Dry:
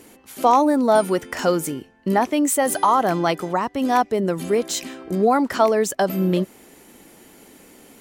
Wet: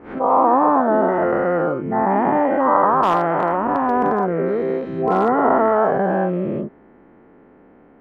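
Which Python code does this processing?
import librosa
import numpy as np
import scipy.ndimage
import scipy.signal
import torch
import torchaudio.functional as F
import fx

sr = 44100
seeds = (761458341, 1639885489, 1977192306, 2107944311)

y = fx.spec_dilate(x, sr, span_ms=480)
y = scipy.signal.sosfilt(scipy.signal.butter(4, 1600.0, 'lowpass', fs=sr, output='sos'), y)
y = fx.clip_hard(y, sr, threshold_db=-3.5, at=(3.02, 5.31))
y = fx.pre_swell(y, sr, db_per_s=120.0)
y = y * librosa.db_to_amplitude(-5.5)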